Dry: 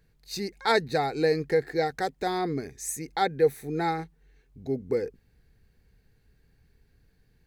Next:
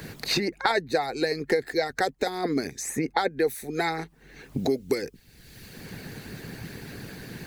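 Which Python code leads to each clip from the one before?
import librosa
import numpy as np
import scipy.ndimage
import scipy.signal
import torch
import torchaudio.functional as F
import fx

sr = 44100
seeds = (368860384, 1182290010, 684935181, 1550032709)

y = fx.hpss(x, sr, part='harmonic', gain_db=-14)
y = fx.band_squash(y, sr, depth_pct=100)
y = y * librosa.db_to_amplitude(5.5)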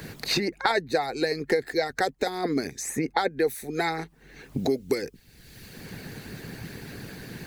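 y = x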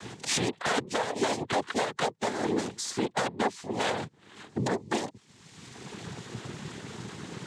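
y = 10.0 ** (-21.0 / 20.0) * (np.abs((x / 10.0 ** (-21.0 / 20.0) + 3.0) % 4.0 - 2.0) - 1.0)
y = fx.noise_vocoder(y, sr, seeds[0], bands=6)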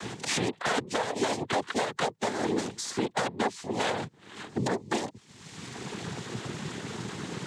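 y = fx.band_squash(x, sr, depth_pct=40)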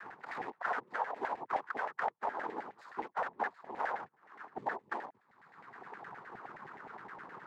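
y = scipy.ndimage.median_filter(x, 15, mode='constant')
y = fx.filter_lfo_bandpass(y, sr, shape='saw_down', hz=9.6, low_hz=760.0, high_hz=1900.0, q=3.6)
y = y * librosa.db_to_amplitude(3.0)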